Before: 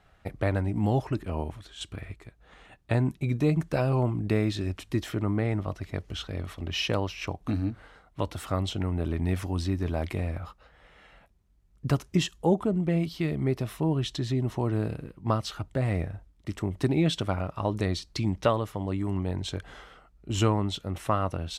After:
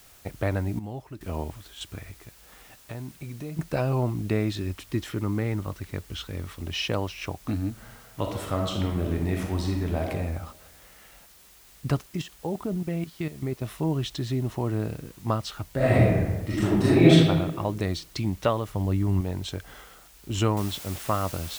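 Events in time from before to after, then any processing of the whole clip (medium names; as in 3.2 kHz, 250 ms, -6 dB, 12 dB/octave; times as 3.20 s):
0.79–1.21 s: gain -11.5 dB
2.00–3.59 s: compression 3:1, threshold -37 dBFS
4.58–6.66 s: peaking EQ 670 Hz -10 dB 0.27 oct
7.71–10.07 s: reverb throw, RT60 1.1 s, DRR 1 dB
12.01–13.62 s: level held to a coarse grid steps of 14 dB
15.76–17.12 s: reverb throw, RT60 1.2 s, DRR -10 dB
18.68–19.21 s: bass shelf 140 Hz +11.5 dB
20.57 s: noise floor step -54 dB -41 dB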